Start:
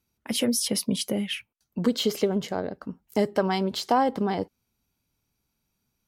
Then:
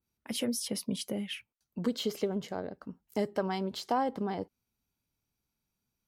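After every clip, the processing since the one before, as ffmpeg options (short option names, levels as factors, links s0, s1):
-af "adynamicequalizer=threshold=0.0141:dfrequency=1800:dqfactor=0.7:tfrequency=1800:tqfactor=0.7:attack=5:release=100:ratio=0.375:range=2:mode=cutabove:tftype=highshelf,volume=0.422"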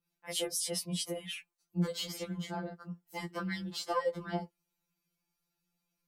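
-af "adynamicequalizer=threshold=0.00112:dfrequency=8100:dqfactor=3.1:tfrequency=8100:tqfactor=3.1:attack=5:release=100:ratio=0.375:range=3:mode=boostabove:tftype=bell,afftfilt=real='re*2.83*eq(mod(b,8),0)':imag='im*2.83*eq(mod(b,8),0)':win_size=2048:overlap=0.75,volume=1.41"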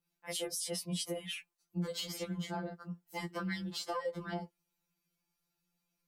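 -af "alimiter=level_in=1.58:limit=0.0631:level=0:latency=1:release=118,volume=0.631"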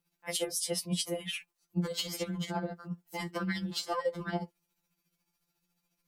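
-af "tremolo=f=14:d=0.52,volume=2.11"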